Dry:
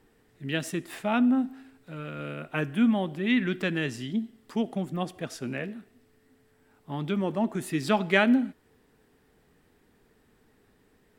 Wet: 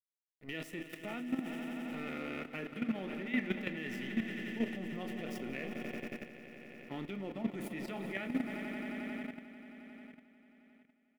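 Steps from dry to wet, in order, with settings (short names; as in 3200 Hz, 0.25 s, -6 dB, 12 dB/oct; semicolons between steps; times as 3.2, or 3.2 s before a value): crossover distortion -41.5 dBFS; Butterworth band-stop 1600 Hz, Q 7.1; doubler 31 ms -12 dB; reverse; compressor 8:1, threshold -31 dBFS, peak gain reduction 14.5 dB; reverse; graphic EQ 125/1000/2000/4000/8000 Hz -9/-9/+7/-5/-7 dB; swelling echo 89 ms, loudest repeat 5, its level -13 dB; on a send at -21 dB: reverb RT60 0.60 s, pre-delay 5 ms; on the sum: level quantiser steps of 11 dB; gain +3.5 dB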